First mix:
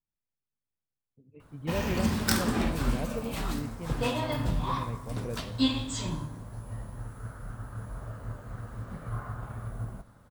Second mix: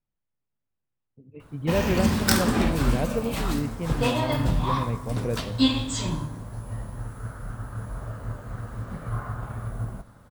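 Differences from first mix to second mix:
speech +8.5 dB; background +5.0 dB

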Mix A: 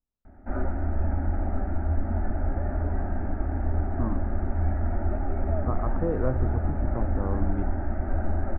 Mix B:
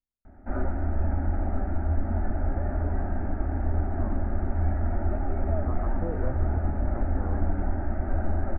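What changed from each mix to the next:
speech -7.0 dB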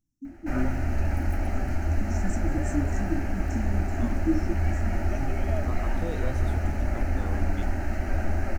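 first voice: unmuted; master: remove low-pass 1.4 kHz 24 dB/octave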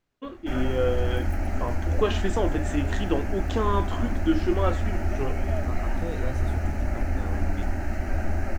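first voice: remove brick-wall FIR band-stop 340–5200 Hz

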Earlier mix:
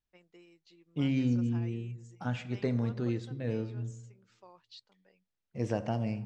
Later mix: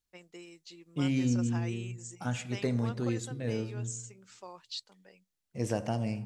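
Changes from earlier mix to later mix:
first voice +8.0 dB; master: remove distance through air 130 m

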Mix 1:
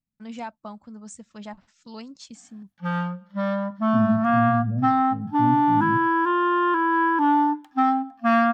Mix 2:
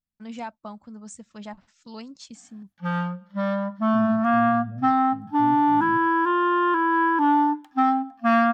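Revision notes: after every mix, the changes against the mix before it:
second voice -9.5 dB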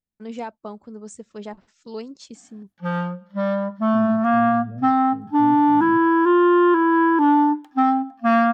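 master: add peaking EQ 410 Hz +14.5 dB 0.67 oct

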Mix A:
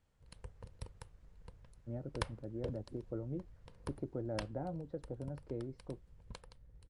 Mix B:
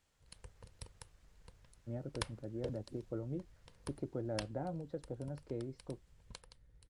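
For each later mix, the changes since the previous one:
background -5.0 dB; master: add treble shelf 2.3 kHz +10.5 dB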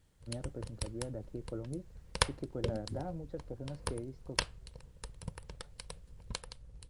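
first voice: entry -1.60 s; second voice: remove frequency weighting A; background +11.5 dB

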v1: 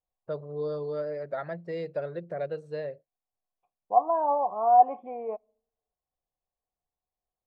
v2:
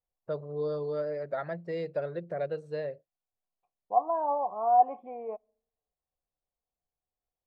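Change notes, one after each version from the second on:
second voice -3.5 dB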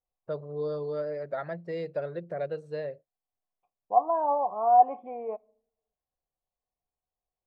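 second voice: send +9.0 dB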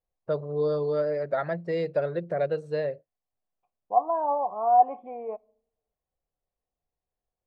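first voice +6.0 dB

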